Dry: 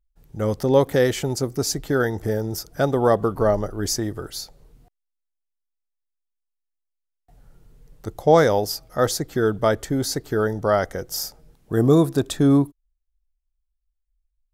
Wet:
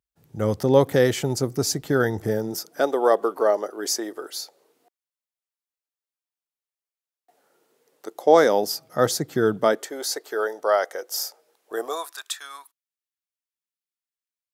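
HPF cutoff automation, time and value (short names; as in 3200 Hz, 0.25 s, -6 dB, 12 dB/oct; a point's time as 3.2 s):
HPF 24 dB/oct
2.17 s 85 Hz
2.93 s 340 Hz
8.1 s 340 Hz
9.01 s 120 Hz
9.51 s 120 Hz
9.93 s 440 Hz
11.74 s 440 Hz
12.18 s 1200 Hz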